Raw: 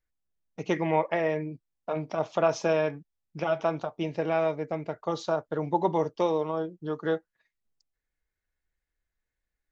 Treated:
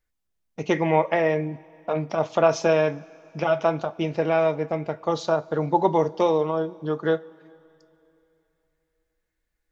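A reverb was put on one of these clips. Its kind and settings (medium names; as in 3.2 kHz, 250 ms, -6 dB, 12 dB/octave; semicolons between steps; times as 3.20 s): two-slope reverb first 0.2 s, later 3.1 s, from -21 dB, DRR 13 dB; trim +5 dB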